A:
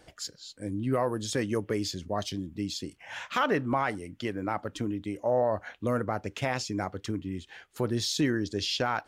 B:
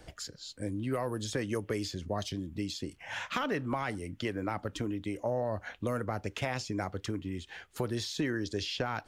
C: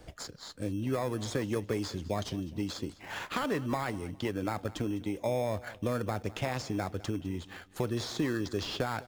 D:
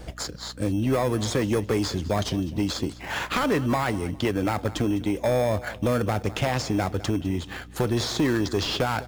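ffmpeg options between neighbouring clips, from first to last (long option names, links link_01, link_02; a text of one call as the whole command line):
ffmpeg -i in.wav -filter_complex "[0:a]lowshelf=frequency=120:gain=9.5,acrossover=split=380|2400[link_01][link_02][link_03];[link_01]acompressor=threshold=-38dB:ratio=4[link_04];[link_02]acompressor=threshold=-35dB:ratio=4[link_05];[link_03]acompressor=threshold=-42dB:ratio=4[link_06];[link_04][link_05][link_06]amix=inputs=3:normalize=0,volume=1.5dB" out.wav
ffmpeg -i in.wav -filter_complex "[0:a]asplit=2[link_01][link_02];[link_02]acrusher=samples=15:mix=1:aa=0.000001,volume=-6dB[link_03];[link_01][link_03]amix=inputs=2:normalize=0,aecho=1:1:205|410|615:0.112|0.0348|0.0108,volume=-2dB" out.wav
ffmpeg -i in.wav -af "aeval=exprs='0.15*sin(PI/2*2*val(0)/0.15)':channel_layout=same,aeval=exprs='val(0)+0.00631*(sin(2*PI*60*n/s)+sin(2*PI*2*60*n/s)/2+sin(2*PI*3*60*n/s)/3+sin(2*PI*4*60*n/s)/4+sin(2*PI*5*60*n/s)/5)':channel_layout=same" out.wav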